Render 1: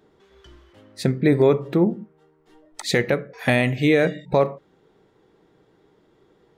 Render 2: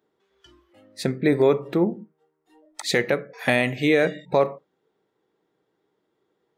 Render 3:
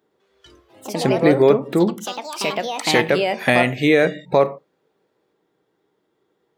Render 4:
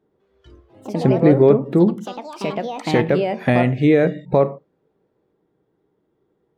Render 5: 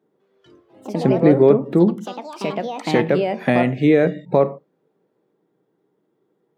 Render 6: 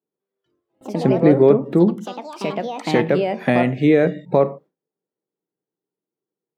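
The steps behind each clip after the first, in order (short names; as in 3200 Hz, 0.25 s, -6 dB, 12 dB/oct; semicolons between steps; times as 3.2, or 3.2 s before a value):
spectral noise reduction 12 dB; HPF 260 Hz 6 dB/oct
echoes that change speed 0.11 s, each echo +4 st, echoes 3, each echo -6 dB; gain +4 dB
tilt -3.5 dB/oct; gain -3.5 dB
HPF 140 Hz 24 dB/oct
gate with hold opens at -38 dBFS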